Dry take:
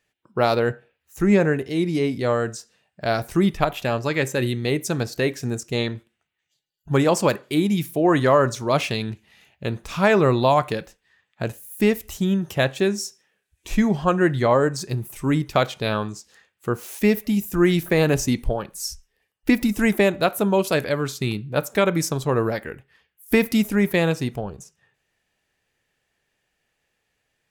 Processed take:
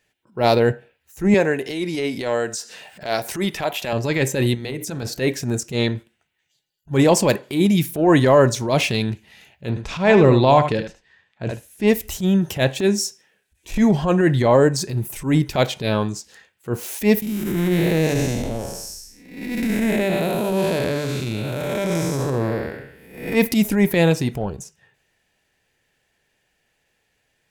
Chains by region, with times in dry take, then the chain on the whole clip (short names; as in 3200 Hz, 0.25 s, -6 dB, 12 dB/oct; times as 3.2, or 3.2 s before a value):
1.34–3.93 HPF 570 Hz 6 dB/oct + upward compressor, threshold -27 dBFS
4.54–5.03 compressor 10:1, threshold -27 dBFS + notches 60/120/180/240/300/360/420/480/540 Hz
9.69–11.88 air absorption 76 m + echo 74 ms -10 dB
17.22–23.35 time blur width 0.319 s + notches 50/100/150/200/250/300/350/400/450 Hz
whole clip: notch 1200 Hz, Q 8.3; dynamic EQ 1400 Hz, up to -6 dB, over -42 dBFS, Q 3.4; transient shaper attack -11 dB, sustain +1 dB; gain +5.5 dB